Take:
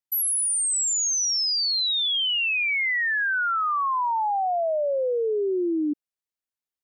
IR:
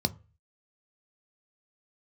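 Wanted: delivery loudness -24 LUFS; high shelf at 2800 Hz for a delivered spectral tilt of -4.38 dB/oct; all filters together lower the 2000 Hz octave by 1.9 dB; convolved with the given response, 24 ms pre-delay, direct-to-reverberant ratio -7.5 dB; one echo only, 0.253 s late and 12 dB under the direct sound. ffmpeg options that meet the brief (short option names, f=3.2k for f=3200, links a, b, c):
-filter_complex "[0:a]equalizer=f=2k:t=o:g=-4.5,highshelf=f=2.8k:g=5,aecho=1:1:253:0.251,asplit=2[a][b];[1:a]atrim=start_sample=2205,adelay=24[c];[b][c]afir=irnorm=-1:irlink=0,volume=1dB[d];[a][d]amix=inputs=2:normalize=0,volume=-13dB"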